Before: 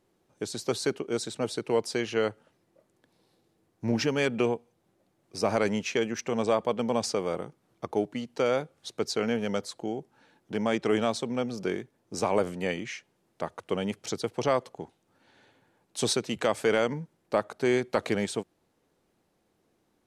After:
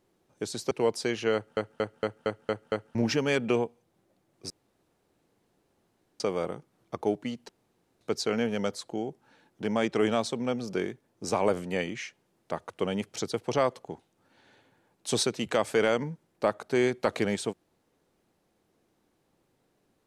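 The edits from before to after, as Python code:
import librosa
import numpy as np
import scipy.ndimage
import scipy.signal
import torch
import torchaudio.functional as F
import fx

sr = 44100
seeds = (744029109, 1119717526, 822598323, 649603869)

y = fx.edit(x, sr, fx.cut(start_s=0.71, length_s=0.9),
    fx.stutter_over(start_s=2.24, slice_s=0.23, count=7),
    fx.room_tone_fill(start_s=5.4, length_s=1.7),
    fx.room_tone_fill(start_s=8.39, length_s=0.52), tone=tone)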